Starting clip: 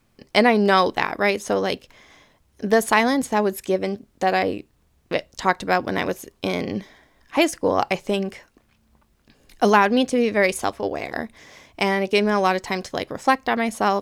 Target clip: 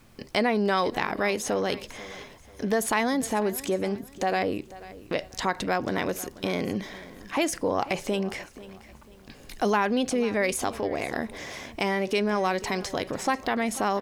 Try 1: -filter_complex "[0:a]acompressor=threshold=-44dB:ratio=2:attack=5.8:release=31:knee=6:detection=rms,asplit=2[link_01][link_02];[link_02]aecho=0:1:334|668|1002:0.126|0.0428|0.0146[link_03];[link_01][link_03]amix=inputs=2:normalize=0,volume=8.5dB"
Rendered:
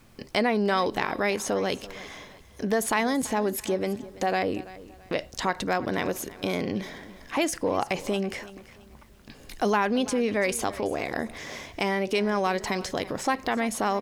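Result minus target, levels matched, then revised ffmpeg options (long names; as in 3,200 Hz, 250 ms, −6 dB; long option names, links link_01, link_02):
echo 156 ms early
-filter_complex "[0:a]acompressor=threshold=-44dB:ratio=2:attack=5.8:release=31:knee=6:detection=rms,asplit=2[link_01][link_02];[link_02]aecho=0:1:490|980|1470:0.126|0.0428|0.0146[link_03];[link_01][link_03]amix=inputs=2:normalize=0,volume=8.5dB"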